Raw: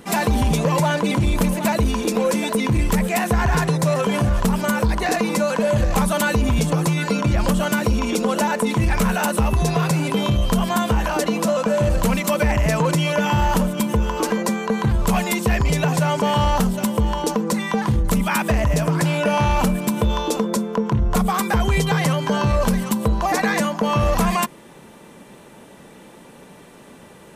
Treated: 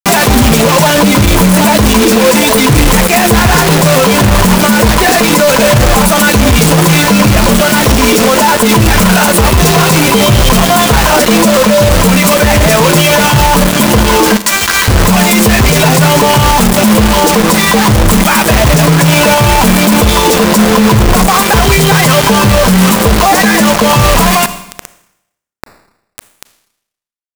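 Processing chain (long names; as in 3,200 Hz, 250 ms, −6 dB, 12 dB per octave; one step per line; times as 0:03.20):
0:14.36–0:14.88: inverse Chebyshev high-pass filter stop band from 410 Hz, stop band 60 dB
downward compressor 6 to 1, threshold −27 dBFS, peak gain reduction 11.5 dB
repeating echo 666 ms, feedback 42%, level −19.5 dB
flanger 0.37 Hz, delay 6.8 ms, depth 4.5 ms, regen +35%
bit-depth reduction 6 bits, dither none
four-comb reverb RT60 0.81 s, combs from 27 ms, DRR 19 dB
soft clipping −28 dBFS, distortion −17 dB
boost into a limiter +35.5 dB
level −1 dB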